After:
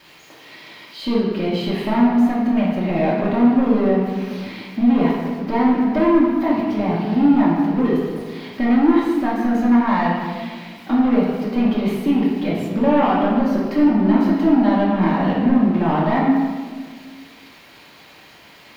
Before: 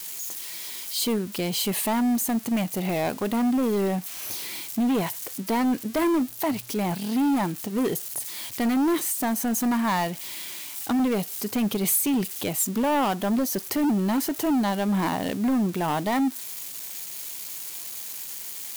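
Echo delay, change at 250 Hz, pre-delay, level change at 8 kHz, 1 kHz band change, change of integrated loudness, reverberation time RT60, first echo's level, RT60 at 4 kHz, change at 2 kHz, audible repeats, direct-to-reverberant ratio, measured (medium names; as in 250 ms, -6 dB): no echo, +8.5 dB, 3 ms, under -20 dB, +6.5 dB, +7.5 dB, 1.6 s, no echo, 1.1 s, +5.0 dB, no echo, -7.0 dB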